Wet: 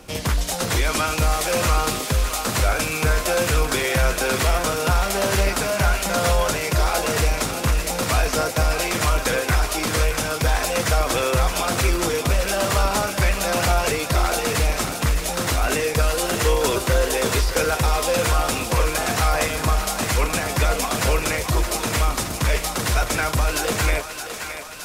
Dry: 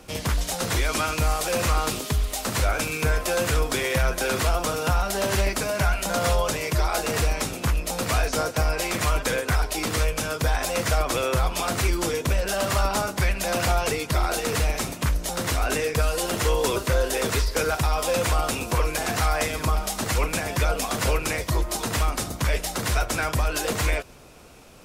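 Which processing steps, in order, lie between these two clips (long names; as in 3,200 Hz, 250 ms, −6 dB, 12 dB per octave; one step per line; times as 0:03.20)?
feedback echo with a high-pass in the loop 618 ms, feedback 67%, high-pass 530 Hz, level −8 dB
level +3 dB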